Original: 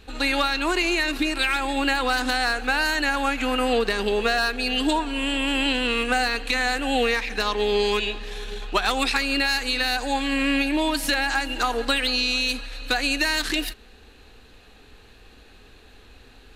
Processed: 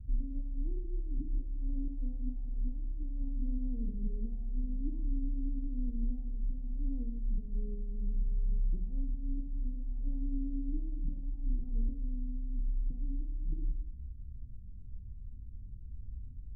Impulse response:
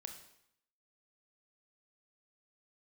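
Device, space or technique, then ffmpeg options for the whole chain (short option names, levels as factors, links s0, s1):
club heard from the street: -filter_complex "[0:a]alimiter=limit=0.141:level=0:latency=1:release=112,lowpass=f=150:w=0.5412,lowpass=f=150:w=1.3066[s0];[1:a]atrim=start_sample=2205[s1];[s0][s1]afir=irnorm=-1:irlink=0,volume=3.98"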